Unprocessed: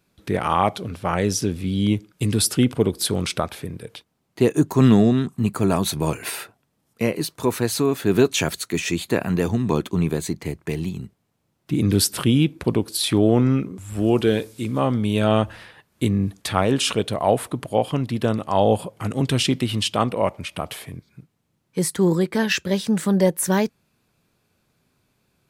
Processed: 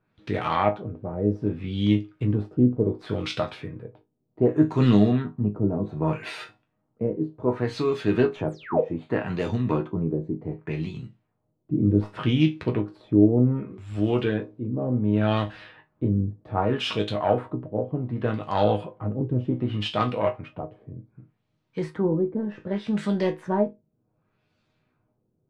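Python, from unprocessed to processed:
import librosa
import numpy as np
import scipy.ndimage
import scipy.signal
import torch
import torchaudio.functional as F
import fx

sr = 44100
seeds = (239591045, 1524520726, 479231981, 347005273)

y = fx.self_delay(x, sr, depth_ms=0.099)
y = fx.spec_paint(y, sr, seeds[0], shape='fall', start_s=8.47, length_s=0.34, low_hz=420.0, high_hz=12000.0, level_db=-12.0)
y = fx.resonator_bank(y, sr, root=44, chord='minor', decay_s=0.22)
y = fx.filter_lfo_lowpass(y, sr, shape='sine', hz=0.66, low_hz=400.0, high_hz=4200.0, q=1.1)
y = y * 10.0 ** (7.5 / 20.0)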